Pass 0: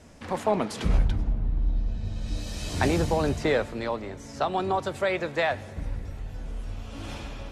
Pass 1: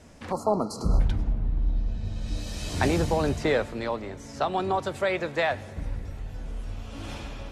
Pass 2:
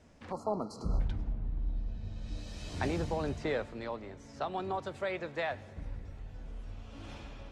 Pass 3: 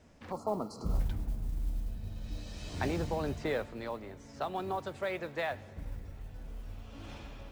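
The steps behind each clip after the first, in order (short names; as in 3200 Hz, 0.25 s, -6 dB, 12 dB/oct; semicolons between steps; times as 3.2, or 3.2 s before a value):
spectral gain 0.32–1, 1400–4000 Hz -29 dB
air absorption 52 m; gain -9 dB
modulation noise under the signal 30 dB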